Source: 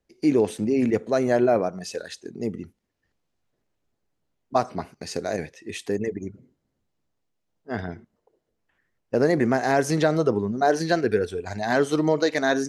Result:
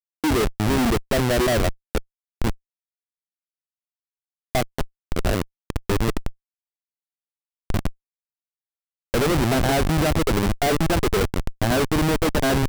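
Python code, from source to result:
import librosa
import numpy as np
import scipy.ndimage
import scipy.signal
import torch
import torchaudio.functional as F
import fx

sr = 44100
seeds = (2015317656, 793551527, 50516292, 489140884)

y = fx.schmitt(x, sr, flips_db=-23.0)
y = fx.notch(y, sr, hz=6600.0, q=30.0)
y = y * librosa.db_to_amplitude(6.5)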